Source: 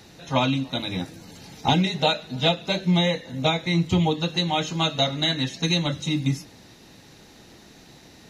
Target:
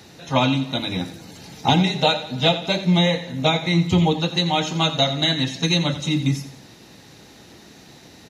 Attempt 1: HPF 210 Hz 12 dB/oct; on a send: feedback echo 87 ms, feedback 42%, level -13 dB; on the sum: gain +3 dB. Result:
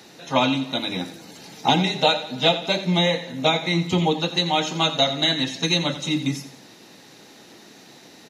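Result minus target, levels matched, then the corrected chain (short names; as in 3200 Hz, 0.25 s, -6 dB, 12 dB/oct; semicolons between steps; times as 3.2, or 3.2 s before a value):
125 Hz band -4.5 dB
HPF 61 Hz 12 dB/oct; on a send: feedback echo 87 ms, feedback 42%, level -13 dB; on the sum: gain +3 dB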